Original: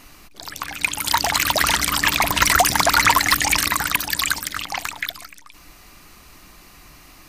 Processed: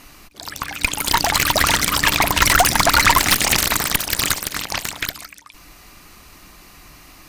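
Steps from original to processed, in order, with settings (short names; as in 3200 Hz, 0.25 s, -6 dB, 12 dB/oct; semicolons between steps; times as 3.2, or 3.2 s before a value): 3.17–5.24 spectral limiter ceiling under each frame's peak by 14 dB; tube stage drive 13 dB, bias 0.75; gain +6.5 dB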